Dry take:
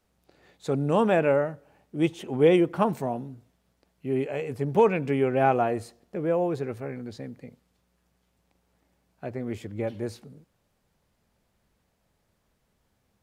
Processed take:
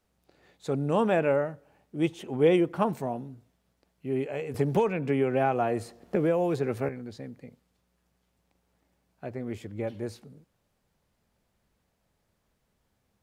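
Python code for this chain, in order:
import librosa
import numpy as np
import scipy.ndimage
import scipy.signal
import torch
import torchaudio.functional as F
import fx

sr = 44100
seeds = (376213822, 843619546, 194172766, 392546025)

y = fx.band_squash(x, sr, depth_pct=100, at=(4.54, 6.89))
y = y * 10.0 ** (-2.5 / 20.0)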